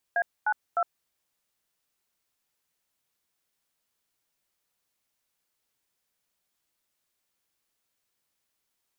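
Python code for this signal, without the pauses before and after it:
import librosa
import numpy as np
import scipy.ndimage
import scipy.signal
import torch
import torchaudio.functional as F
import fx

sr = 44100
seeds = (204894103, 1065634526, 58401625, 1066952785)

y = fx.dtmf(sr, digits='A92', tone_ms=61, gap_ms=243, level_db=-24.5)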